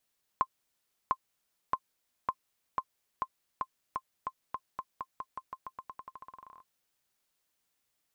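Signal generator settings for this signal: bouncing ball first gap 0.70 s, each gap 0.89, 1.05 kHz, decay 58 ms -15 dBFS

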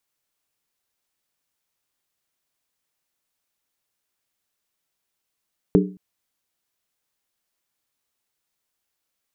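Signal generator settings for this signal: skin hit length 0.22 s, lowest mode 186 Hz, modes 4, decay 0.40 s, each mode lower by 1.5 dB, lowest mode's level -12 dB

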